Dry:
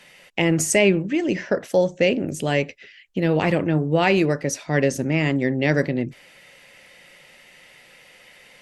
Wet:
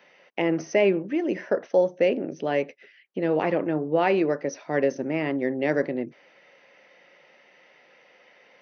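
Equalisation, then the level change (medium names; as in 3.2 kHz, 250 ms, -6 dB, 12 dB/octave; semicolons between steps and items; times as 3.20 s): high-pass 320 Hz 12 dB/octave; brick-wall FIR low-pass 6.3 kHz; peaking EQ 4.4 kHz -13 dB 2.3 oct; 0.0 dB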